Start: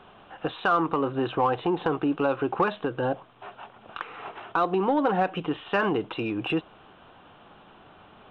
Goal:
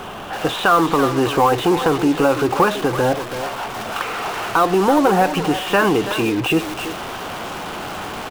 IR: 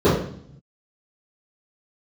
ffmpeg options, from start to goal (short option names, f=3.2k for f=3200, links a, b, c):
-filter_complex "[0:a]aeval=exprs='val(0)+0.5*0.0237*sgn(val(0))':c=same,asplit=2[a][b];[b]adelay=330,highpass=300,lowpass=3.4k,asoftclip=type=hard:threshold=-21.5dB,volume=-8dB[c];[a][c]amix=inputs=2:normalize=0,acrusher=bits=5:mix=0:aa=0.5,volume=7.5dB"